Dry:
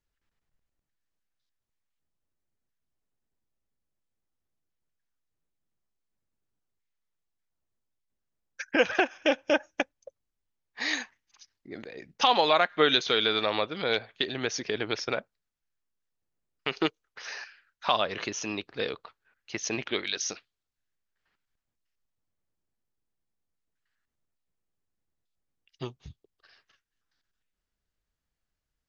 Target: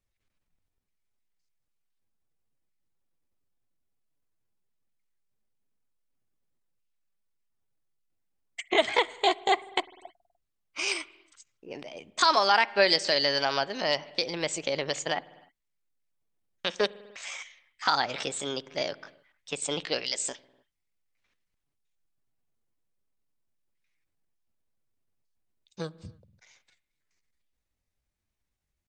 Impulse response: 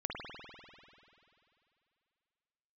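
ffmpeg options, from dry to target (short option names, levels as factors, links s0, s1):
-filter_complex "[0:a]asetrate=57191,aresample=44100,atempo=0.771105,asplit=2[s0][s1];[1:a]atrim=start_sample=2205,afade=t=out:st=0.38:d=0.01,atrim=end_sample=17199,lowshelf=f=310:g=11[s2];[s1][s2]afir=irnorm=-1:irlink=0,volume=0.075[s3];[s0][s3]amix=inputs=2:normalize=0"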